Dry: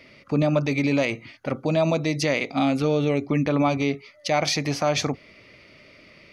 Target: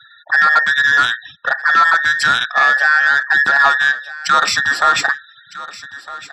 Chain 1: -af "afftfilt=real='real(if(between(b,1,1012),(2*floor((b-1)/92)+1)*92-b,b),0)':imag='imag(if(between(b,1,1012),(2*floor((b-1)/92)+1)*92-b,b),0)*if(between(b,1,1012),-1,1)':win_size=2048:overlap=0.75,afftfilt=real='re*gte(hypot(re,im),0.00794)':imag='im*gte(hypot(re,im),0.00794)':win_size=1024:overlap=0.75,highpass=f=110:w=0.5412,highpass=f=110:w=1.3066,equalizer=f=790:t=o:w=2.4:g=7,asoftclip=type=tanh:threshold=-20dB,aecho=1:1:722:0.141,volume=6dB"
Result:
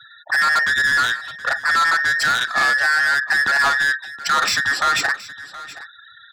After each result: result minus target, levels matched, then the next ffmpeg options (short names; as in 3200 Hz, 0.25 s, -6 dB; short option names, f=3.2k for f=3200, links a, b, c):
echo 0.536 s early; soft clip: distortion +10 dB
-af "afftfilt=real='real(if(between(b,1,1012),(2*floor((b-1)/92)+1)*92-b,b),0)':imag='imag(if(between(b,1,1012),(2*floor((b-1)/92)+1)*92-b,b),0)*if(between(b,1,1012),-1,1)':win_size=2048:overlap=0.75,afftfilt=real='re*gte(hypot(re,im),0.00794)':imag='im*gte(hypot(re,im),0.00794)':win_size=1024:overlap=0.75,highpass=f=110:w=0.5412,highpass=f=110:w=1.3066,equalizer=f=790:t=o:w=2.4:g=7,asoftclip=type=tanh:threshold=-20dB,aecho=1:1:1258:0.141,volume=6dB"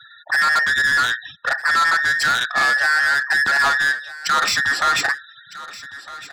soft clip: distortion +10 dB
-af "afftfilt=real='real(if(between(b,1,1012),(2*floor((b-1)/92)+1)*92-b,b),0)':imag='imag(if(between(b,1,1012),(2*floor((b-1)/92)+1)*92-b,b),0)*if(between(b,1,1012),-1,1)':win_size=2048:overlap=0.75,afftfilt=real='re*gte(hypot(re,im),0.00794)':imag='im*gte(hypot(re,im),0.00794)':win_size=1024:overlap=0.75,highpass=f=110:w=0.5412,highpass=f=110:w=1.3066,equalizer=f=790:t=o:w=2.4:g=7,asoftclip=type=tanh:threshold=-10dB,aecho=1:1:1258:0.141,volume=6dB"